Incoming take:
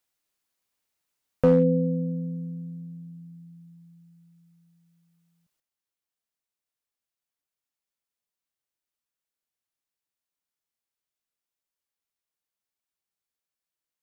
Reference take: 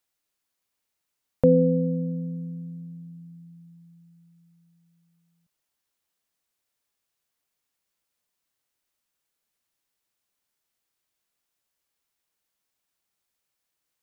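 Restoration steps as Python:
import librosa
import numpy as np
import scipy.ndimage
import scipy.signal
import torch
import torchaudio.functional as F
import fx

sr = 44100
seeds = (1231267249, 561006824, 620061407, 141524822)

y = fx.fix_declip(x, sr, threshold_db=-12.0)
y = fx.fix_level(y, sr, at_s=5.6, step_db=10.0)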